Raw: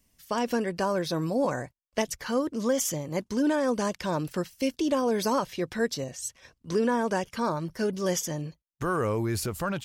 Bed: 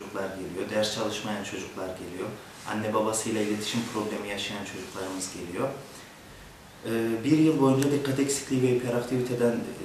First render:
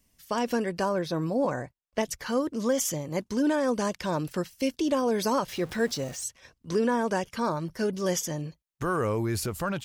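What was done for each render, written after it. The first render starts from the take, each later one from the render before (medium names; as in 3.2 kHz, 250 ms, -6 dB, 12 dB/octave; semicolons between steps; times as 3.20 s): 0.89–2.03 s: treble shelf 3.5 kHz -7.5 dB; 5.48–6.24 s: jump at every zero crossing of -40.5 dBFS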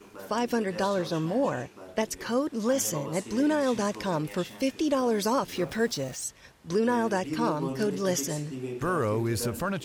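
add bed -11.5 dB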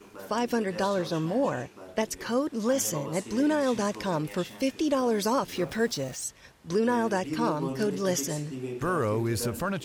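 no audible change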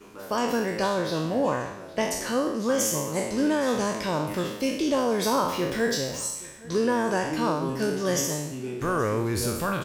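spectral sustain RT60 0.79 s; delay 822 ms -21.5 dB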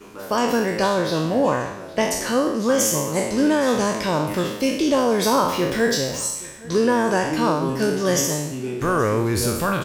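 trim +5.5 dB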